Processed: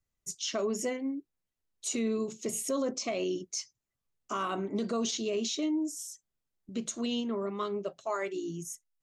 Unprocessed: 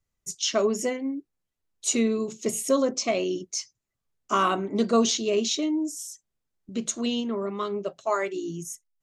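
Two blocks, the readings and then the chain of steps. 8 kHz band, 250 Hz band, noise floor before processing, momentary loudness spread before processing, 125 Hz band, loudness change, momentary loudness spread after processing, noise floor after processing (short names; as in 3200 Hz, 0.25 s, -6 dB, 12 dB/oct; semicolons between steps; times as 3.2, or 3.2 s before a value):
-6.5 dB, -6.0 dB, -83 dBFS, 11 LU, -5.0 dB, -7.0 dB, 9 LU, under -85 dBFS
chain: limiter -19.5 dBFS, peak gain reduction 8.5 dB; gain -4 dB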